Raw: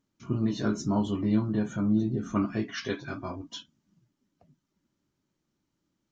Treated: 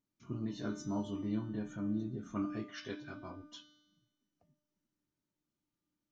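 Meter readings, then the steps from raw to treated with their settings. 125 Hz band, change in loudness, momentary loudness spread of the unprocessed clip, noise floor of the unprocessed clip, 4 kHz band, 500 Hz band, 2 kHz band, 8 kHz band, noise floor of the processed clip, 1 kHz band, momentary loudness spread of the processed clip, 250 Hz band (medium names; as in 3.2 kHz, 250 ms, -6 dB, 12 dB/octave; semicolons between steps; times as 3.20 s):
-11.5 dB, -10.5 dB, 11 LU, -80 dBFS, -10.5 dB, -11.0 dB, -10.5 dB, no reading, under -85 dBFS, -10.5 dB, 11 LU, -10.5 dB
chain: feedback comb 300 Hz, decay 1.1 s, mix 80%; trim +2 dB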